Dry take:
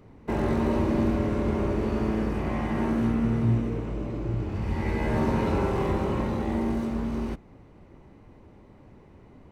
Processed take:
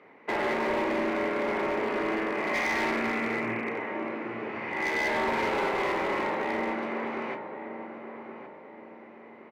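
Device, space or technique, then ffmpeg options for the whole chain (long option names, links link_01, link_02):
megaphone: -filter_complex "[0:a]highpass=110,asettb=1/sr,asplit=3[link_01][link_02][link_03];[link_01]atrim=end=2.544[link_04];[link_02]atrim=start=2.54:end=3.7,asetpts=PTS-STARTPTS,afade=type=in:duration=0.004:curve=qsin,afade=type=out:start_time=1.156:duration=0.004:curve=qsin,highshelf=frequency=3200:width_type=q:width=3:gain=-8.5[link_05];[link_03]atrim=start=3.696[link_06];[link_04][link_05]acrossfade=duration=0.004:curve1=hsin:curve2=qsin[link_07];[link_07][link_06]acrossfade=duration=0.004:curve1=qsin:curve2=hsin,highpass=490,lowpass=2700,equalizer=frequency=2100:width_type=o:width=0.6:gain=10,asplit=2[link_08][link_09];[link_09]adelay=1120,lowpass=frequency=1400:poles=1,volume=-9dB,asplit=2[link_10][link_11];[link_11]adelay=1120,lowpass=frequency=1400:poles=1,volume=0.41,asplit=2[link_12][link_13];[link_13]adelay=1120,lowpass=frequency=1400:poles=1,volume=0.41,asplit=2[link_14][link_15];[link_15]adelay=1120,lowpass=frequency=1400:poles=1,volume=0.41,asplit=2[link_16][link_17];[link_17]adelay=1120,lowpass=frequency=1400:poles=1,volume=0.41[link_18];[link_08][link_10][link_12][link_14][link_16][link_18]amix=inputs=6:normalize=0,asoftclip=type=hard:threshold=-28.5dB,asplit=2[link_19][link_20];[link_20]adelay=34,volume=-11dB[link_21];[link_19][link_21]amix=inputs=2:normalize=0,volume=4dB"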